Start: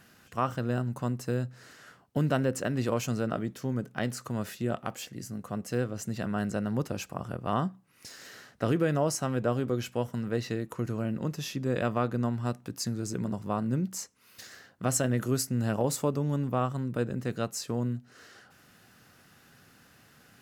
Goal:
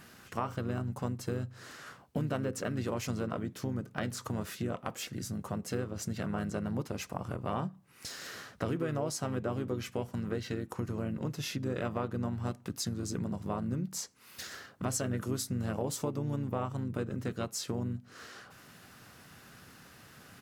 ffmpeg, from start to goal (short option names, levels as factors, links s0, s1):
-filter_complex "[0:a]asplit=2[s0][s1];[s1]asetrate=35002,aresample=44100,atempo=1.25992,volume=0.501[s2];[s0][s2]amix=inputs=2:normalize=0,acompressor=threshold=0.0126:ratio=2.5,volume=1.41"